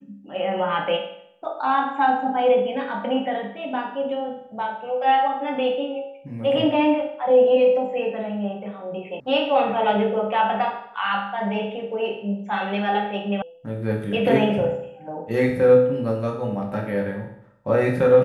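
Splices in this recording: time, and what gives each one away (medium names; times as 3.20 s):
9.20 s: sound stops dead
13.42 s: sound stops dead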